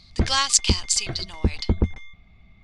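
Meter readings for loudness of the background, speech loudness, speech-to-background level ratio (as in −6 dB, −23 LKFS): −28.5 LKFS, −21.5 LKFS, 7.0 dB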